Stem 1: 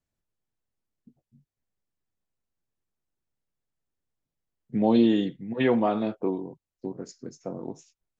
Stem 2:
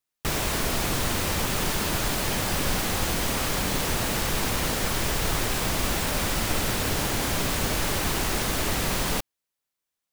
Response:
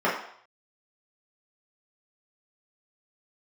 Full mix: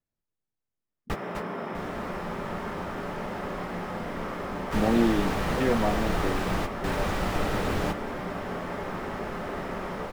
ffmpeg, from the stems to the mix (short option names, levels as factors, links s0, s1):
-filter_complex "[0:a]equalizer=f=63:w=1.5:g=-5,volume=0.708,asplit=2[s0][s1];[1:a]highshelf=f=5300:g=-9.5,adelay=850,volume=0.841,asplit=3[s2][s3][s4];[s3]volume=0.106[s5];[s4]volume=0.251[s6];[s1]apad=whole_len=484112[s7];[s2][s7]sidechaingate=range=0.0224:threshold=0.00112:ratio=16:detection=peak[s8];[2:a]atrim=start_sample=2205[s9];[s5][s9]afir=irnorm=-1:irlink=0[s10];[s6]aecho=0:1:651:1[s11];[s0][s8][s10][s11]amix=inputs=4:normalize=0,highshelf=f=3100:g=-8.5"